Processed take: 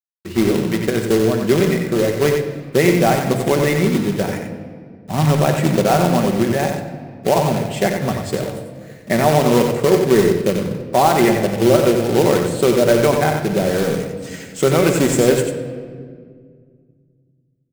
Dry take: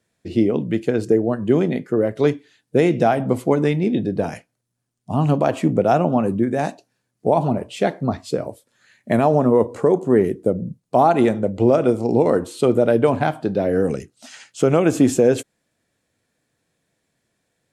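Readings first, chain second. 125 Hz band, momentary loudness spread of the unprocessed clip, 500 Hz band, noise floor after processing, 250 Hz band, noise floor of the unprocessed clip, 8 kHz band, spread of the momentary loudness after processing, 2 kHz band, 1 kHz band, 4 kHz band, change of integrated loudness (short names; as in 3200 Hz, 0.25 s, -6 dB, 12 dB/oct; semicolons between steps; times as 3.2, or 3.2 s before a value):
+4.0 dB, 9 LU, +2.0 dB, -57 dBFS, +1.5 dB, -75 dBFS, n/a, 13 LU, +7.5 dB, +2.5 dB, +11.5 dB, +2.5 dB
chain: thirty-one-band EQ 250 Hz -3 dB, 2000 Hz +8 dB, 8000 Hz +6 dB; companded quantiser 4-bit; echo 91 ms -6 dB; shoebox room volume 3200 m³, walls mixed, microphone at 1.1 m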